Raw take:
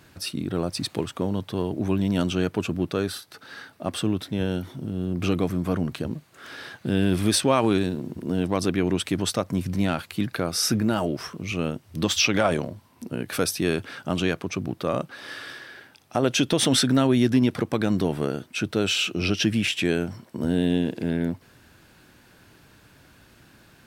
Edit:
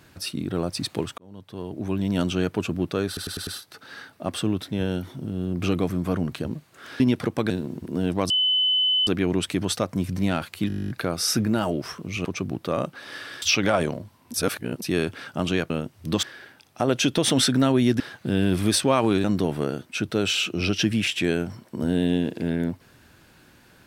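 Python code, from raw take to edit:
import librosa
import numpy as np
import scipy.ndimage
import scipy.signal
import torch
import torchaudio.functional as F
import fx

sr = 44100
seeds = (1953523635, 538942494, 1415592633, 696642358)

y = fx.edit(x, sr, fx.fade_in_span(start_s=1.18, length_s=1.03),
    fx.stutter(start_s=3.07, slice_s=0.1, count=5),
    fx.swap(start_s=6.6, length_s=1.24, other_s=17.35, other_length_s=0.5),
    fx.insert_tone(at_s=8.64, length_s=0.77, hz=3020.0, db=-18.0),
    fx.stutter(start_s=10.25, slice_s=0.02, count=12),
    fx.swap(start_s=11.6, length_s=0.53, other_s=14.41, other_length_s=1.17),
    fx.reverse_span(start_s=13.05, length_s=0.48), tone=tone)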